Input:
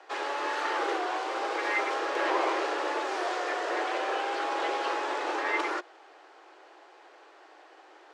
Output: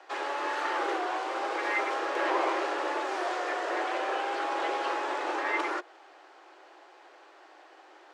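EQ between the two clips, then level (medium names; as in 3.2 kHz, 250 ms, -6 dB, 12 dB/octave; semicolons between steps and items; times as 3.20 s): dynamic bell 4.8 kHz, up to -3 dB, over -46 dBFS, Q 0.8; band-stop 450 Hz, Q 12; 0.0 dB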